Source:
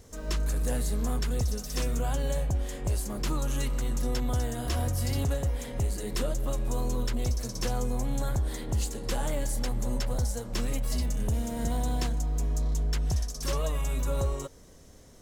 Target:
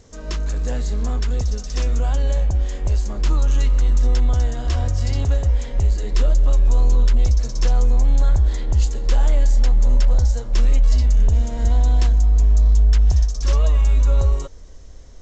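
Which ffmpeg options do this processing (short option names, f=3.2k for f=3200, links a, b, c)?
-af "asubboost=boost=6.5:cutoff=60,volume=3.5dB" -ar 16000 -c:a g722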